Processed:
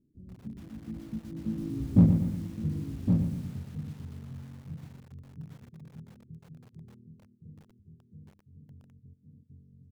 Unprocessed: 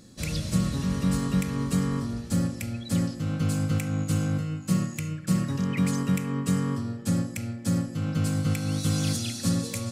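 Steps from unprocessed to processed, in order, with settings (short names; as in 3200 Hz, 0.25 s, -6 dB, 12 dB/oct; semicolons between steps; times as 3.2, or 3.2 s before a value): Doppler pass-by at 2.01, 54 m/s, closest 5.3 m; reverb removal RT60 1.4 s; inverse Chebyshev low-pass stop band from 780 Hz, stop band 40 dB; low shelf 100 Hz +4.5 dB; in parallel at -4 dB: hard clip -27 dBFS, distortion -6 dB; on the sum: echo 1.115 s -6 dB; lo-fi delay 0.119 s, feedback 55%, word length 9-bit, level -7 dB; gain +4 dB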